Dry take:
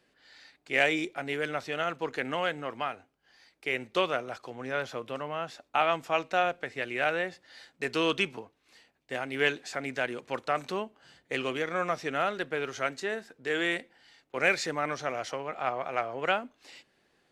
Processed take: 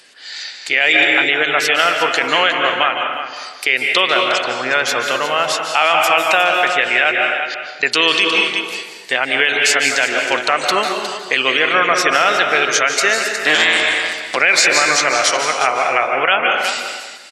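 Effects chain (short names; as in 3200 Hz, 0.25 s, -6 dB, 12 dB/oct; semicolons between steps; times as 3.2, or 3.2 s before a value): 13.34–14.36 cycle switcher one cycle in 3, inverted; spectral gate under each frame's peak -30 dB strong; tilt +4.5 dB/oct; in parallel at -1.5 dB: compressor, threshold -34 dBFS, peak gain reduction 17.5 dB; 7.11–7.83 on the sum: flipped gate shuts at -29 dBFS, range -38 dB; echo 0.36 s -12 dB; on a send at -4 dB: reverb RT60 1.2 s, pre-delay 0.138 s; on the sum: downsampling 32000 Hz; maximiser +14 dB; gain -1 dB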